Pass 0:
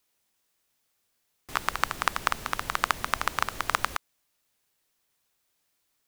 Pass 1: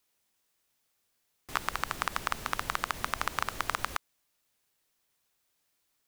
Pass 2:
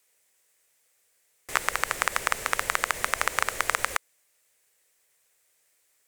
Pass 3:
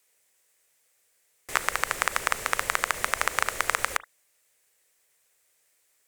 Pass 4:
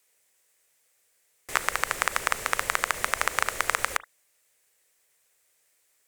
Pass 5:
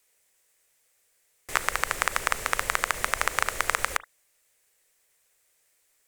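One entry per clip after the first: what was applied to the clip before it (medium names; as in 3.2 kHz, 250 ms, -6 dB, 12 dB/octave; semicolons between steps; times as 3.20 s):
peak limiter -7.5 dBFS, peak gain reduction 6 dB; trim -1.5 dB
ten-band graphic EQ 250 Hz -4 dB, 500 Hz +12 dB, 2 kHz +11 dB, 8 kHz +11 dB, 16 kHz +7 dB; trim -1.5 dB
reverberation, pre-delay 35 ms, DRR 20 dB
no audible change
bass shelf 62 Hz +8.5 dB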